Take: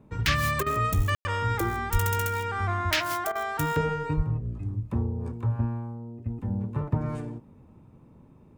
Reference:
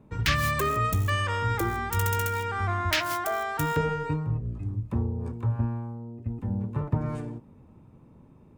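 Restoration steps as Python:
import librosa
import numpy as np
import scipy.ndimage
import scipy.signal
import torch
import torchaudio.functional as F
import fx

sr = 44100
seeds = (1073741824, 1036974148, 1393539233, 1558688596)

y = fx.highpass(x, sr, hz=140.0, slope=24, at=(0.96, 1.08), fade=0.02)
y = fx.highpass(y, sr, hz=140.0, slope=24, at=(1.92, 2.04), fade=0.02)
y = fx.highpass(y, sr, hz=140.0, slope=24, at=(4.16, 4.28), fade=0.02)
y = fx.fix_ambience(y, sr, seeds[0], print_start_s=7.98, print_end_s=8.48, start_s=1.15, end_s=1.25)
y = fx.fix_interpolate(y, sr, at_s=(0.63, 3.32), length_ms=32.0)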